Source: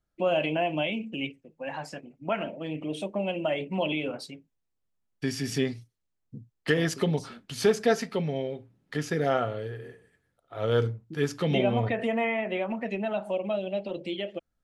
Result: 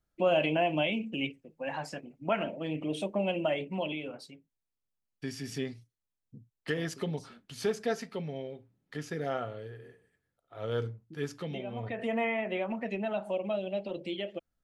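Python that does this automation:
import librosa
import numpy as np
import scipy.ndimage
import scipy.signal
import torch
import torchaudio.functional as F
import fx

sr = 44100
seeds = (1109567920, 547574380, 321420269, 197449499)

y = fx.gain(x, sr, db=fx.line((3.39, -0.5), (4.04, -8.0), (11.35, -8.0), (11.64, -15.5), (12.14, -3.0)))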